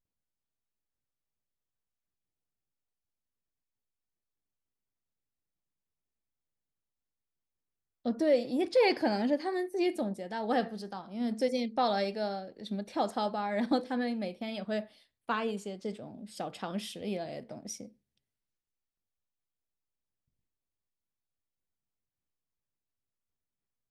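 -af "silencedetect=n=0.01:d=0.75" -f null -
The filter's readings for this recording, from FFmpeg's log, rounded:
silence_start: 0.00
silence_end: 8.06 | silence_duration: 8.06
silence_start: 17.86
silence_end: 23.90 | silence_duration: 6.04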